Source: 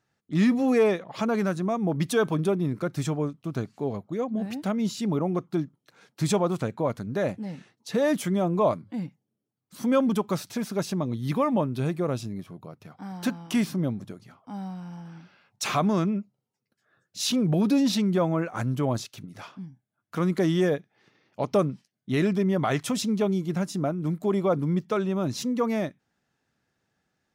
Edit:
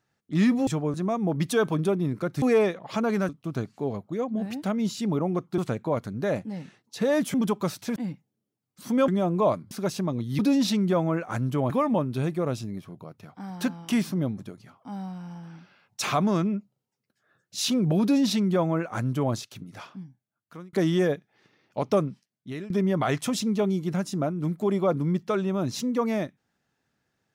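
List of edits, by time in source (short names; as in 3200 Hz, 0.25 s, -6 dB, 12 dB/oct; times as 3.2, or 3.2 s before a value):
0.67–1.54 swap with 3.02–3.29
5.58–6.51 cut
8.27–8.9 swap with 10.02–10.64
17.64–18.95 copy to 11.32
19.53–20.35 fade out
21.56–22.32 fade out, to -18.5 dB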